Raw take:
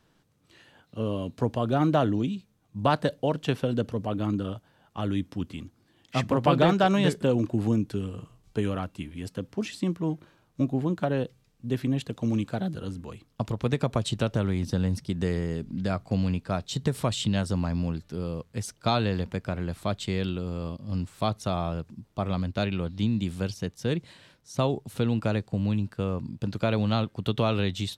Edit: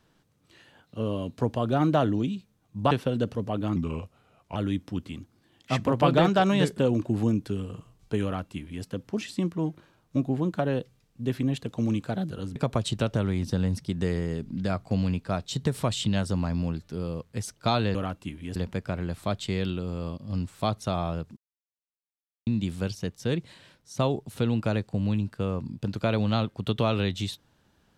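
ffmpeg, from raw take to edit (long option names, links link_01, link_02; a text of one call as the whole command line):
ffmpeg -i in.wav -filter_complex "[0:a]asplit=9[link_01][link_02][link_03][link_04][link_05][link_06][link_07][link_08][link_09];[link_01]atrim=end=2.912[link_10];[link_02]atrim=start=3.478:end=4.334[link_11];[link_03]atrim=start=4.33:end=5,asetpts=PTS-STARTPTS,asetrate=37044,aresample=44100[link_12];[link_04]atrim=start=4.996:end=13.002[link_13];[link_05]atrim=start=13.758:end=19.152[link_14];[link_06]atrim=start=8.678:end=9.292[link_15];[link_07]atrim=start=19.148:end=21.96,asetpts=PTS-STARTPTS,afade=type=out:start_time=2.808:duration=0.004:curve=hsin[link_16];[link_08]atrim=start=21.96:end=23.06,asetpts=PTS-STARTPTS,volume=0[link_17];[link_09]atrim=start=23.06,asetpts=PTS-STARTPTS,afade=type=in:duration=0.004:curve=hsin[link_18];[link_10][link_11]acrossfade=duration=0.004:curve1=hsin:curve2=hsin[link_19];[link_19][link_12]acrossfade=duration=0.004:curve1=hsin:curve2=hsin[link_20];[link_20][link_13]acrossfade=duration=0.004:curve1=hsin:curve2=hsin[link_21];[link_21][link_14]acrossfade=duration=0.004:curve1=hsin:curve2=hsin[link_22];[link_22][link_15]acrossfade=duration=0.004:curve1=hsin:curve2=hsin[link_23];[link_16][link_17][link_18]concat=n=3:v=0:a=1[link_24];[link_23][link_24]acrossfade=duration=0.004:curve1=hsin:curve2=hsin" out.wav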